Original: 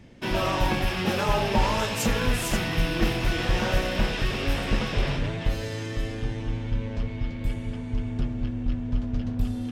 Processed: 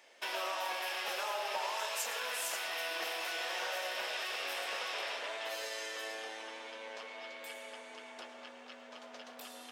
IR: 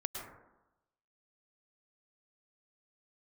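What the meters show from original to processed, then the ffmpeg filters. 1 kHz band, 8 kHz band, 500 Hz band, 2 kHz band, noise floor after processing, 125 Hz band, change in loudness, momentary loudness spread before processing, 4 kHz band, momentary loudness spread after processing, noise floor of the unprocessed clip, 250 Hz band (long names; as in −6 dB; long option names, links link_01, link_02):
−8.5 dB, −5.0 dB, −11.5 dB, −7.0 dB, −53 dBFS, below −40 dB, −10.5 dB, 7 LU, −6.0 dB, 13 LU, −34 dBFS, −29.0 dB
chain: -filter_complex "[0:a]highpass=frequency=570:width=0.5412,highpass=frequency=570:width=1.3066,highshelf=frequency=5400:gain=6,acompressor=threshold=-35dB:ratio=3,asplit=2[link_01][link_02];[1:a]atrim=start_sample=2205[link_03];[link_02][link_03]afir=irnorm=-1:irlink=0,volume=0dB[link_04];[link_01][link_04]amix=inputs=2:normalize=0,volume=-7.5dB"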